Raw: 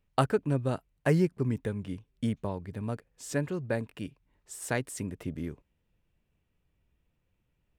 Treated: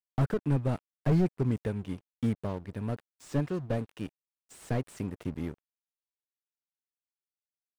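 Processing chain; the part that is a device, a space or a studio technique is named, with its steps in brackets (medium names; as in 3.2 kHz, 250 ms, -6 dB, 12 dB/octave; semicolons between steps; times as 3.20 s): early transistor amplifier (crossover distortion -48.5 dBFS; slew-rate limiter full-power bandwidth 18 Hz); trim +2 dB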